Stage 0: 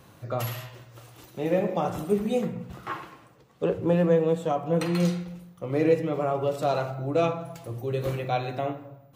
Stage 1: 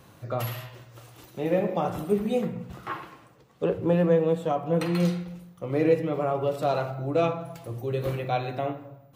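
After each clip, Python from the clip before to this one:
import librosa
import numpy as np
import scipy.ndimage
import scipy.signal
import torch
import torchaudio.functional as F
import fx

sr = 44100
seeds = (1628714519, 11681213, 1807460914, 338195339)

y = fx.dynamic_eq(x, sr, hz=6800.0, q=1.5, threshold_db=-57.0, ratio=4.0, max_db=-5)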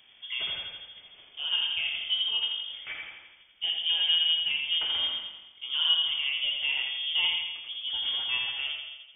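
y = fx.echo_feedback(x, sr, ms=84, feedback_pct=56, wet_db=-4.5)
y = fx.freq_invert(y, sr, carrier_hz=3400)
y = y * librosa.db_to_amplitude(-5.5)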